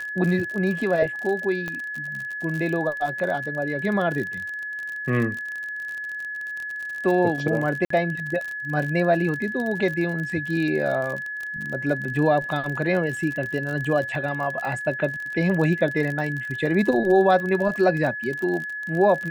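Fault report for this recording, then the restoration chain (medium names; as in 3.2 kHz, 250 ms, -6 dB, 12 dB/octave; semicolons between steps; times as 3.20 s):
crackle 44 per s -28 dBFS
whine 1.7 kHz -29 dBFS
1.68 s: pop -17 dBFS
7.85–7.90 s: dropout 54 ms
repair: de-click; band-stop 1.7 kHz, Q 30; interpolate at 7.85 s, 54 ms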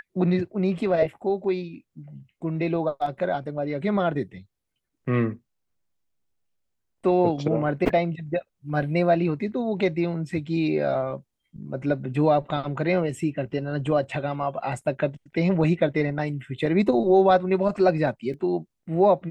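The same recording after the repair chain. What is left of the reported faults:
nothing left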